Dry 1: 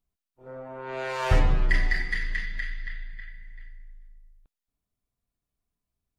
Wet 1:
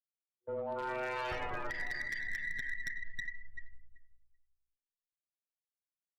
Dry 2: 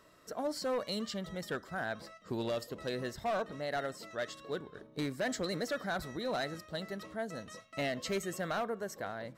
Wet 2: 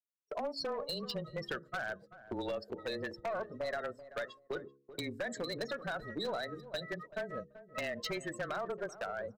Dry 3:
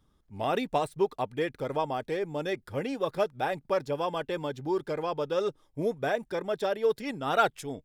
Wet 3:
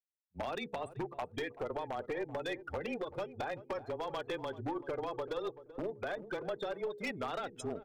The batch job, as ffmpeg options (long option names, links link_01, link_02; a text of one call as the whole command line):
ffmpeg -i in.wav -filter_complex "[0:a]afftdn=noise_reduction=35:noise_floor=-37,tiltshelf=frequency=720:gain=-7.5,agate=range=-34dB:threshold=-49dB:ratio=16:detection=peak,afreqshift=-22,adynamicequalizer=threshold=0.0126:dfrequency=510:dqfactor=0.7:tfrequency=510:tqfactor=0.7:attack=5:release=100:ratio=0.375:range=2:mode=boostabove:tftype=bell,acrossover=split=360|4600[link_01][link_02][link_03];[link_01]acompressor=threshold=-40dB:ratio=4[link_04];[link_02]acompressor=threshold=-33dB:ratio=4[link_05];[link_03]acompressor=threshold=-53dB:ratio=4[link_06];[link_04][link_05][link_06]amix=inputs=3:normalize=0,alimiter=level_in=2.5dB:limit=-24dB:level=0:latency=1:release=199,volume=-2.5dB,acompressor=threshold=-42dB:ratio=6,aeval=exprs='0.0133*(abs(mod(val(0)/0.0133+3,4)-2)-1)':channel_layout=same,bandreject=frequency=69.16:width_type=h:width=4,bandreject=frequency=138.32:width_type=h:width=4,bandreject=frequency=207.48:width_type=h:width=4,bandreject=frequency=276.64:width_type=h:width=4,bandreject=frequency=345.8:width_type=h:width=4,bandreject=frequency=414.96:width_type=h:width=4,bandreject=frequency=484.12:width_type=h:width=4,aeval=exprs='0.0178*(cos(1*acos(clip(val(0)/0.0178,-1,1)))-cos(1*PI/2))+0.00224*(cos(2*acos(clip(val(0)/0.0178,-1,1)))-cos(2*PI/2))+0.0002*(cos(8*acos(clip(val(0)/0.0178,-1,1)))-cos(8*PI/2))':channel_layout=same,asplit=2[link_07][link_08];[link_08]adelay=384,lowpass=frequency=970:poles=1,volume=-13.5dB,asplit=2[link_09][link_10];[link_10]adelay=384,lowpass=frequency=970:poles=1,volume=0.21[link_11];[link_07][link_09][link_11]amix=inputs=3:normalize=0,volume=7.5dB" out.wav